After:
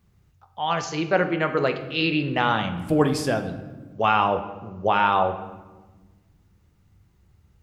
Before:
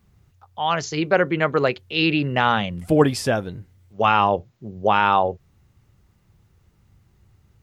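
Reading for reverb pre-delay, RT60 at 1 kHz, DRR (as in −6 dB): 6 ms, 1.2 s, 7.0 dB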